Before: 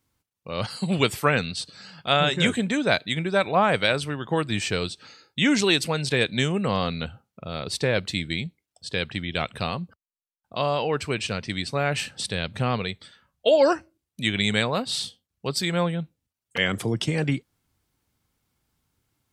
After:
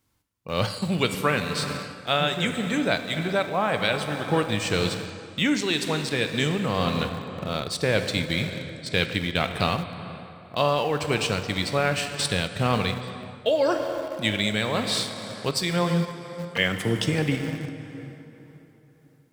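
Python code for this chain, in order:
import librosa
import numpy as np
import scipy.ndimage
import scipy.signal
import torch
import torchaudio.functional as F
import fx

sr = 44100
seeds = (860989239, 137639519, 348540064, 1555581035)

p1 = fx.rev_plate(x, sr, seeds[0], rt60_s=3.6, hf_ratio=0.65, predelay_ms=0, drr_db=6.0)
p2 = fx.tremolo_shape(p1, sr, shape='triangle', hz=1.9, depth_pct=30)
p3 = np.where(np.abs(p2) >= 10.0 ** (-28.5 / 20.0), p2, 0.0)
p4 = p2 + (p3 * 10.0 ** (-10.5 / 20.0))
p5 = fx.rider(p4, sr, range_db=4, speed_s=0.5)
y = p5 * 10.0 ** (-1.5 / 20.0)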